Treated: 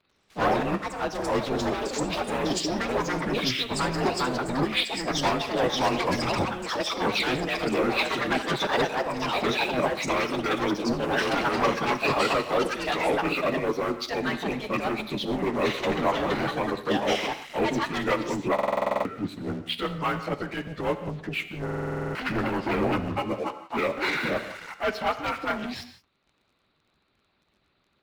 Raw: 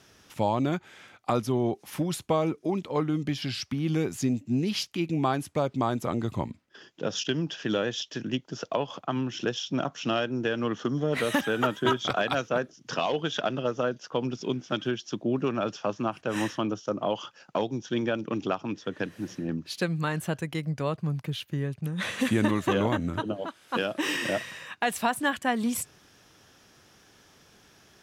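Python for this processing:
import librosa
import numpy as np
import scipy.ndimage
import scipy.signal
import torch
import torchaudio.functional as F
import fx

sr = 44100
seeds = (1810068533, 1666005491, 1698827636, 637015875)

y = fx.partial_stretch(x, sr, pct=89)
y = scipy.signal.sosfilt(scipy.signal.butter(6, 4400.0, 'lowpass', fs=sr, output='sos'), y)
y = fx.low_shelf(y, sr, hz=92.0, db=9.5)
y = fx.leveller(y, sr, passes=3)
y = fx.transient(y, sr, attack_db=-8, sustain_db=-3)
y = fx.hpss(y, sr, part='harmonic', gain_db=-16)
y = fx.rev_gated(y, sr, seeds[0], gate_ms=200, shape='flat', drr_db=9.5)
y = fx.echo_pitch(y, sr, ms=92, semitones=6, count=2, db_per_echo=-3.0)
y = fx.buffer_glitch(y, sr, at_s=(18.54, 21.64), block=2048, repeats=10)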